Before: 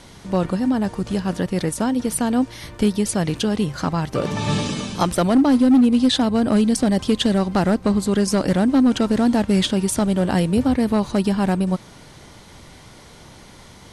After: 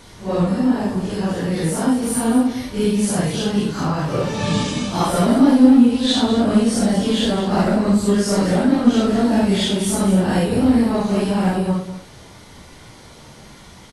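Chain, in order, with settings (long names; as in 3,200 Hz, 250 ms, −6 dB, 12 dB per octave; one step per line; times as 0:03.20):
random phases in long frames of 200 ms
on a send: single-tap delay 198 ms −12 dB
on the sum: level +1.5 dB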